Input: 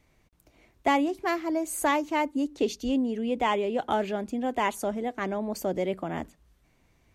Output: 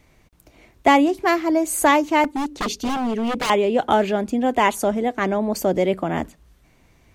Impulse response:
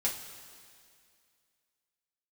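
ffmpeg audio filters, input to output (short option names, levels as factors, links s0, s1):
-filter_complex "[0:a]asettb=1/sr,asplit=3[s0][s1][s2];[s0]atrim=end=2.244[s3];[s1]atrim=start=2.24:end=3.5,asetpts=PTS-STARTPTS,afade=t=in:d=0.004:c=qsin,afade=t=out:st=1.256:d=0.004:c=qsin,aeval=exprs='0.0447*(abs(mod(val(0)/0.0447+3,4)-2)-1)':c=same[s4];[s2]atrim=start=3.496[s5];[s3][s4]acrossfade=d=0.004:c1=hsin:c2=qsin[s6];[s6][s5]acrossfade=d=0.004:c1=qsin:c2=hsin,volume=2.82"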